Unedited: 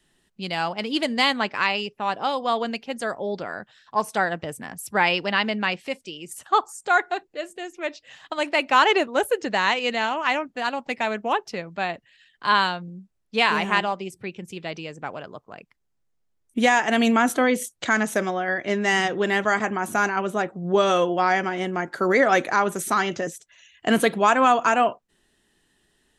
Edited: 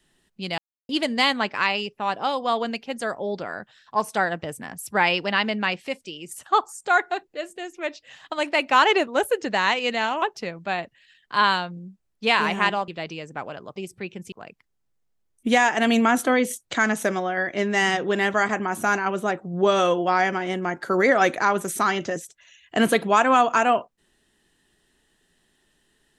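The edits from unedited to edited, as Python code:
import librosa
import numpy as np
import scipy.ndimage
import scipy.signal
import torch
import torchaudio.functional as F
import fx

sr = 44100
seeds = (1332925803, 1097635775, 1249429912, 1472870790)

y = fx.edit(x, sr, fx.silence(start_s=0.58, length_s=0.31),
    fx.cut(start_s=10.22, length_s=1.11),
    fx.move(start_s=13.99, length_s=0.56, to_s=15.43), tone=tone)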